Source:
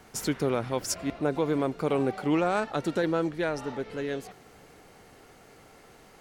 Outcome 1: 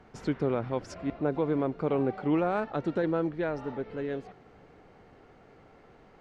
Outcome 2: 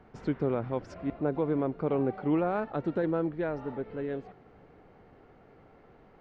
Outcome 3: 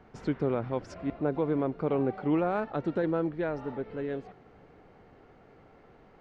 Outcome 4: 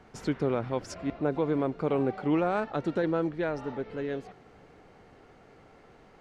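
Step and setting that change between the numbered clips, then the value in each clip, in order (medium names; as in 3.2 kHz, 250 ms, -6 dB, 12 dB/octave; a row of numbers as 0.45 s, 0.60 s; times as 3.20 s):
tape spacing loss, at 10 kHz: 29 dB, 46 dB, 38 dB, 21 dB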